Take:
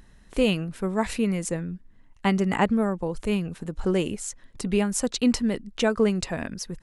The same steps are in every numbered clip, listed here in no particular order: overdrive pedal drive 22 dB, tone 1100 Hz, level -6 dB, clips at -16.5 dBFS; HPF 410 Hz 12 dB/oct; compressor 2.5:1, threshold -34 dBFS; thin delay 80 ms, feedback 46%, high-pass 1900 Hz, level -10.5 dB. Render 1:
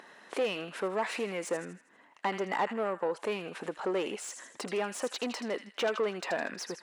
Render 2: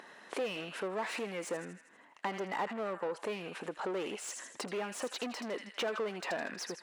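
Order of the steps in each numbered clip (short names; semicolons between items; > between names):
compressor > thin delay > overdrive pedal > HPF; thin delay > overdrive pedal > compressor > HPF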